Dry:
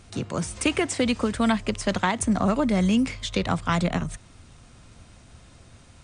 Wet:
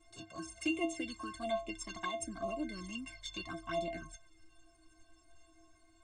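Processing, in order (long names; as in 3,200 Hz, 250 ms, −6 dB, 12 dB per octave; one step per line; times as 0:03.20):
stiff-string resonator 320 Hz, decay 0.34 s, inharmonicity 0.03
flanger swept by the level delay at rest 3 ms, full sweep at −36.5 dBFS
level +5 dB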